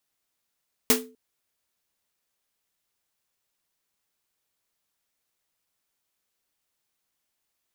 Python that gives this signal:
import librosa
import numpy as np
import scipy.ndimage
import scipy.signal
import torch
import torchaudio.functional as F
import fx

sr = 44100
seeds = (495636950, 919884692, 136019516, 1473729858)

y = fx.drum_snare(sr, seeds[0], length_s=0.25, hz=250.0, second_hz=440.0, noise_db=5.5, noise_from_hz=580.0, decay_s=0.39, noise_decay_s=0.21)